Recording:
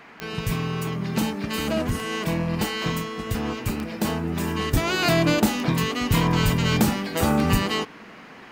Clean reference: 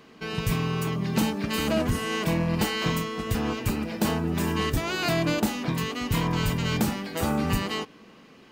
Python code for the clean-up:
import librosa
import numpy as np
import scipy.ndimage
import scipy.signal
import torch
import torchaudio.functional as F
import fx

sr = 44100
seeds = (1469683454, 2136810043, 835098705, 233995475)

y = fx.fix_declick_ar(x, sr, threshold=10.0)
y = fx.noise_reduce(y, sr, print_start_s=7.99, print_end_s=8.49, reduce_db=6.0)
y = fx.fix_level(y, sr, at_s=4.73, step_db=-5.0)